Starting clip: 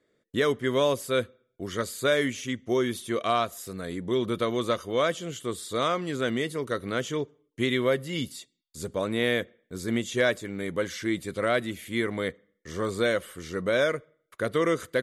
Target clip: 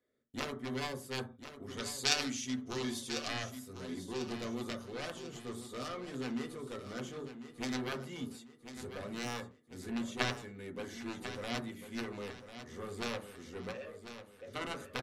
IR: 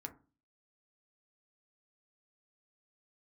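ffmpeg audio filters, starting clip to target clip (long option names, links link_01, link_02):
-filter_complex "[0:a]aeval=exprs='0.299*(cos(1*acos(clip(val(0)/0.299,-1,1)))-cos(1*PI/2))+0.133*(cos(3*acos(clip(val(0)/0.299,-1,1)))-cos(3*PI/2))':channel_layout=same,asettb=1/sr,asplit=3[link_01][link_02][link_03];[link_01]atrim=end=1.774[link_04];[link_02]atrim=start=1.77:end=3.28,asetpts=PTS-STARTPTS,afade=type=in:duration=0.004:curve=qsin,afade=type=out:start_time=1.506:duration=0.004:curve=qsin,equalizer=frequency=5400:width=0.71:gain=13.5[link_05];[link_03]atrim=start=3.276[link_06];[link_04][link_05]acrossfade=duration=0.004:curve1=hsin:curve2=qsin[link_07];[link_07][link_06]acrossfade=duration=0.004:curve1=qsin:curve2=hsin,asplit=3[link_08][link_09][link_10];[link_08]afade=type=out:start_time=13.71:duration=0.02[link_11];[link_09]asplit=3[link_12][link_13][link_14];[link_12]bandpass=frequency=530:width_type=q:width=8,volume=0dB[link_15];[link_13]bandpass=frequency=1840:width_type=q:width=8,volume=-6dB[link_16];[link_14]bandpass=frequency=2480:width_type=q:width=8,volume=-9dB[link_17];[link_15][link_16][link_17]amix=inputs=3:normalize=0,afade=type=in:start_time=13.71:duration=0.02,afade=type=out:start_time=14.47:duration=0.02[link_18];[link_10]afade=type=in:start_time=14.47:duration=0.02[link_19];[link_11][link_18][link_19]amix=inputs=3:normalize=0,aecho=1:1:1046|2092|3138|4184:0.282|0.11|0.0429|0.0167[link_20];[1:a]atrim=start_sample=2205,afade=type=out:start_time=0.19:duration=0.01,atrim=end_sample=8820,asetrate=38808,aresample=44100[link_21];[link_20][link_21]afir=irnorm=-1:irlink=0,volume=1dB"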